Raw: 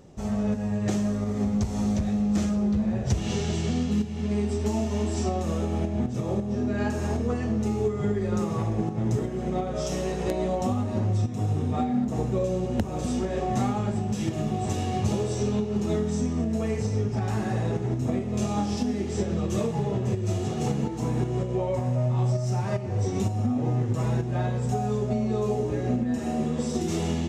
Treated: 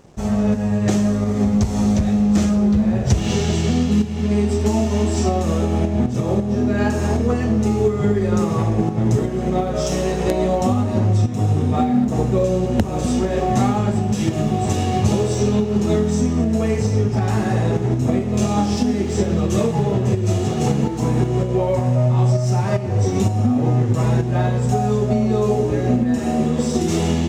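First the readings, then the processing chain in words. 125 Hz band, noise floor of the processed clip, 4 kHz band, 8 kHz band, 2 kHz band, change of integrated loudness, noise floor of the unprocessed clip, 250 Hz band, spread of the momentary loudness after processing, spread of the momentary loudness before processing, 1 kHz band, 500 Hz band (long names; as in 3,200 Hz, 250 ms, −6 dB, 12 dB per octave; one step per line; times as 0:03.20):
+8.0 dB, −23 dBFS, +8.5 dB, +8.5 dB, +8.5 dB, +8.0 dB, −31 dBFS, +8.0 dB, 3 LU, 3 LU, +8.0 dB, +8.0 dB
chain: dead-zone distortion −54 dBFS
level +8.5 dB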